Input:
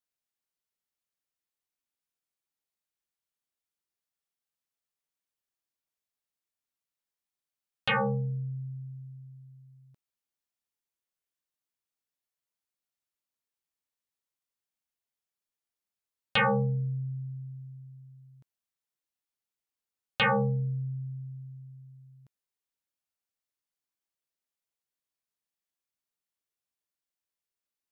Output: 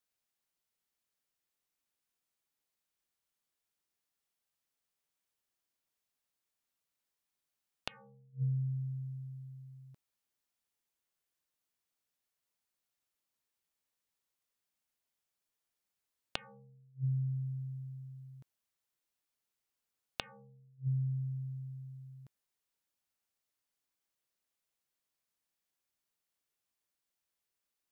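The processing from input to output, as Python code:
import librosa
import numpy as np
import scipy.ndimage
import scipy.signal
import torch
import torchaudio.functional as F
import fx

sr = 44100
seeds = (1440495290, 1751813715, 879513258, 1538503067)

y = fx.gate_flip(x, sr, shuts_db=-28.0, range_db=-35)
y = F.gain(torch.from_numpy(y), 3.0).numpy()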